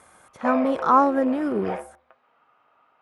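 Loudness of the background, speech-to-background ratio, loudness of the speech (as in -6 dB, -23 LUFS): -33.0 LUFS, 11.0 dB, -22.0 LUFS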